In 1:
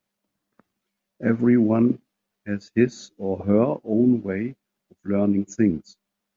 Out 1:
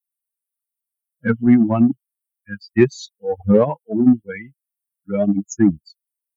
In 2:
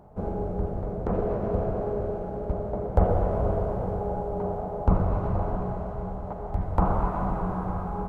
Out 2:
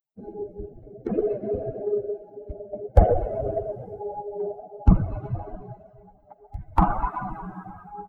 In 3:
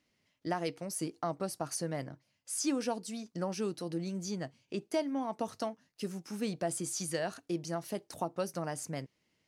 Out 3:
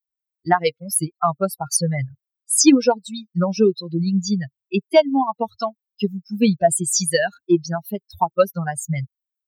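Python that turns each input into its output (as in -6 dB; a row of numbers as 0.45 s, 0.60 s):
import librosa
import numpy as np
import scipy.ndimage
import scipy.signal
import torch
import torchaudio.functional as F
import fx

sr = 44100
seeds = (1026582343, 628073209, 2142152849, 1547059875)

p1 = fx.bin_expand(x, sr, power=3.0)
p2 = 10.0 ** (-25.0 / 20.0) * np.tanh(p1 / 10.0 ** (-25.0 / 20.0))
p3 = p1 + F.gain(torch.from_numpy(p2), -7.0).numpy()
y = p3 * 10.0 ** (-1.5 / 20.0) / np.max(np.abs(p3))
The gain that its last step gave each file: +8.0 dB, +8.0 dB, +20.0 dB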